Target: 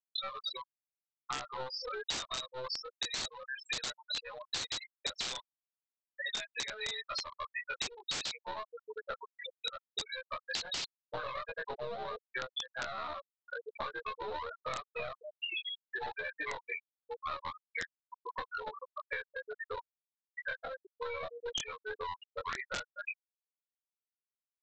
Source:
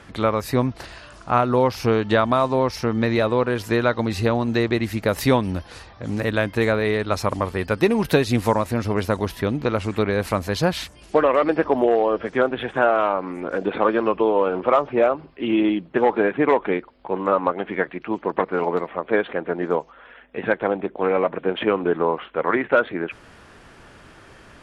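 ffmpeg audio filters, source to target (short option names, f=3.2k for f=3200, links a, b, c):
-filter_complex "[0:a]afftfilt=real='re':imag='-im':win_size=2048:overlap=0.75,aderivative,aeval=exprs='0.0841*(cos(1*acos(clip(val(0)/0.0841,-1,1)))-cos(1*PI/2))+0.00299*(cos(2*acos(clip(val(0)/0.0841,-1,1)))-cos(2*PI/2))':c=same,aeval=exprs='val(0)+0.0002*(sin(2*PI*60*n/s)+sin(2*PI*2*60*n/s)/2+sin(2*PI*3*60*n/s)/3+sin(2*PI*4*60*n/s)/4+sin(2*PI*5*60*n/s)/5)':c=same,highpass=f=380:w=0.5412,highpass=f=380:w=1.3066,asplit=2[a][b];[b]adelay=223,lowpass=f=2k:p=1,volume=-13dB,asplit=2[c][d];[d]adelay=223,lowpass=f=2k:p=1,volume=0.18[e];[a][c][e]amix=inputs=3:normalize=0,afftfilt=real='re*gte(hypot(re,im),0.02)':imag='im*gte(hypot(re,im),0.02)':win_size=1024:overlap=0.75,acrossover=split=1400[f][g];[f]aeval=exprs='clip(val(0),-1,0.00266)':c=same[h];[h][g]amix=inputs=2:normalize=0,lowpass=f=3.9k:t=q:w=9.7,aresample=16000,aeval=exprs='(mod(29.9*val(0)+1,2)-1)/29.9':c=same,aresample=44100,acompressor=threshold=-51dB:ratio=12,volume=15.5dB"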